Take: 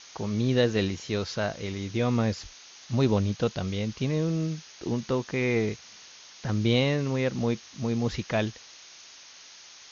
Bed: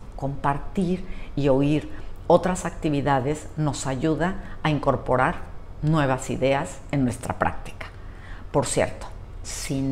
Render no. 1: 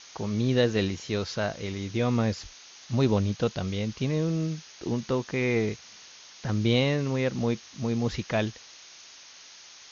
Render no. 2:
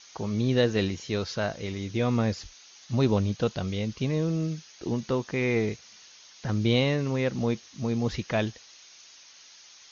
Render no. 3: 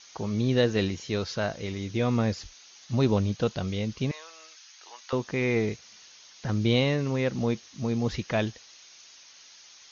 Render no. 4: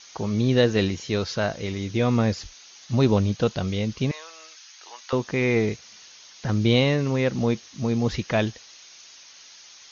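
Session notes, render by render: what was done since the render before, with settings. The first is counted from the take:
no processing that can be heard
broadband denoise 6 dB, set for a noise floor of −50 dBFS
0:04.11–0:05.13: high-pass filter 890 Hz 24 dB per octave
level +4 dB

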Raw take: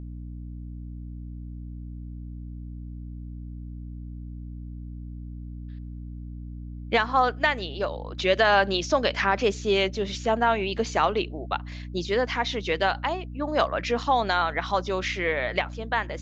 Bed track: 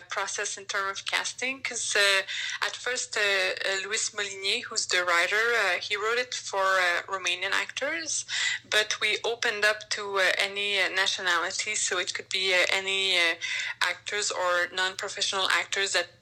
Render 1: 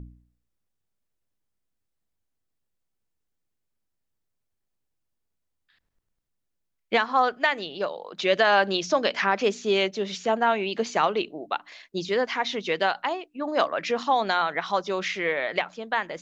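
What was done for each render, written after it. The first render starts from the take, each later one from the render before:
hum removal 60 Hz, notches 5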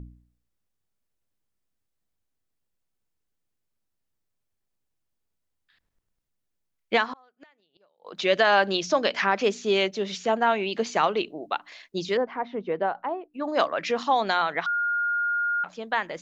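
0:07.06–0:08.10: gate with flip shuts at −25 dBFS, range −36 dB
0:12.17–0:13.34: low-pass filter 1,000 Hz
0:14.66–0:15.64: beep over 1,420 Hz −22.5 dBFS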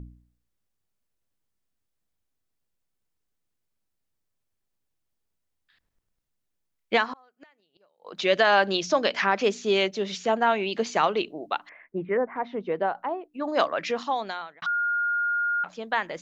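0:06.99–0:08.16: notch filter 3,500 Hz
0:11.69–0:12.36: Butterworth low-pass 2,200 Hz 48 dB per octave
0:13.76–0:14.62: fade out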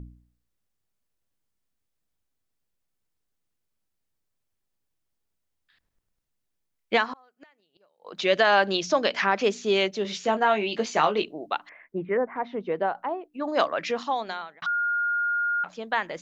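0:10.03–0:11.24: double-tracking delay 19 ms −7 dB
0:14.22–0:14.79: hum removal 199.1 Hz, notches 4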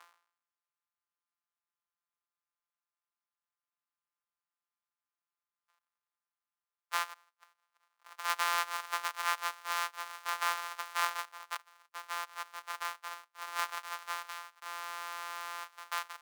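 samples sorted by size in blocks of 256 samples
four-pole ladder high-pass 940 Hz, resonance 50%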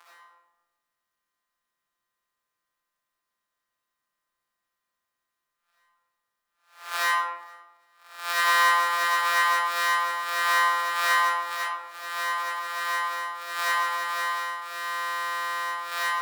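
peak hold with a rise ahead of every peak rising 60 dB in 0.47 s
comb and all-pass reverb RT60 1.1 s, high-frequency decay 0.4×, pre-delay 30 ms, DRR −9.5 dB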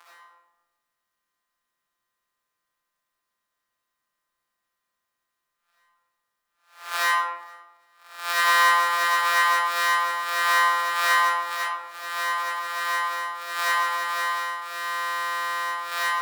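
level +2 dB

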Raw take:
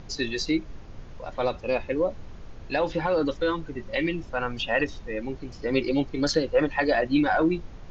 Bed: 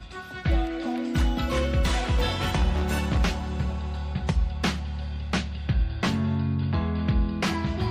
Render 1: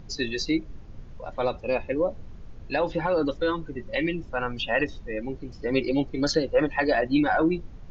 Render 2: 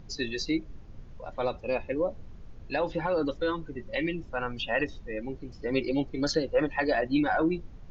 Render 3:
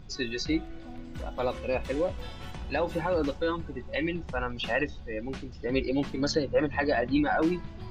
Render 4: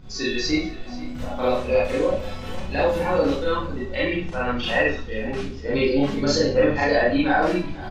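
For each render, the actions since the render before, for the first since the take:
broadband denoise 7 dB, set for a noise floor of −42 dBFS
level −3.5 dB
mix in bed −16 dB
single-tap delay 487 ms −18 dB; four-comb reverb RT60 0.39 s, combs from 29 ms, DRR −7 dB

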